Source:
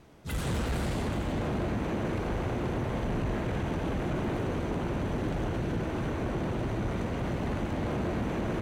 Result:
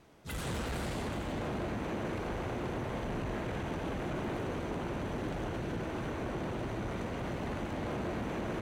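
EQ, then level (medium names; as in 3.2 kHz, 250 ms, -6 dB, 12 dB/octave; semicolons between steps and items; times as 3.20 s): bass shelf 270 Hz -5.5 dB; -2.5 dB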